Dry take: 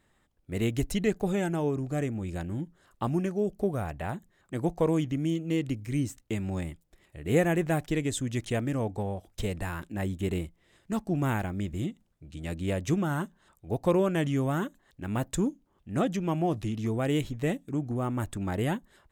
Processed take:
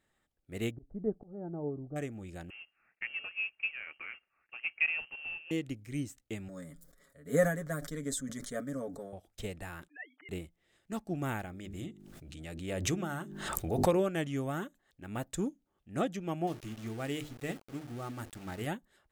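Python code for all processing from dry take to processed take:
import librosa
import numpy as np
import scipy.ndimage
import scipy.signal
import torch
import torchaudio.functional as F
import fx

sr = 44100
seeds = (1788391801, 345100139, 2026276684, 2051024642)

y = fx.chain(x, sr, fx.gaussian_blur(sigma=9.9),
    fx.auto_swell(attack_ms=237.0), at=(0.71, 1.96))
y = fx.chain(y, sr, fx.cvsd(bps=32000),
    fx.highpass(hz=390.0, slope=12),
    fx.freq_invert(carrier_hz=3000), at=(2.5, 5.51))
y = fx.chain(y, sr, fx.fixed_phaser(hz=530.0, stages=8),
    fx.comb(ms=7.2, depth=0.55),
    fx.sustainer(db_per_s=53.0), at=(6.48, 9.13))
y = fx.chain(y, sr, fx.sine_speech(),
    fx.bandpass_q(hz=1900.0, q=2.9),
    fx.comb(ms=6.7, depth=0.88), at=(9.88, 10.29))
y = fx.chain(y, sr, fx.hum_notches(base_hz=50, count=8),
    fx.pre_swell(db_per_s=25.0), at=(11.45, 13.97))
y = fx.chain(y, sr, fx.peak_eq(hz=540.0, db=-4.0, octaves=0.73),
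    fx.hum_notches(base_hz=50, count=9),
    fx.sample_gate(floor_db=-39.0), at=(16.47, 18.67))
y = fx.low_shelf(y, sr, hz=280.0, db=-5.5)
y = fx.notch(y, sr, hz=1000.0, q=7.5)
y = fx.upward_expand(y, sr, threshold_db=-35.0, expansion=1.5)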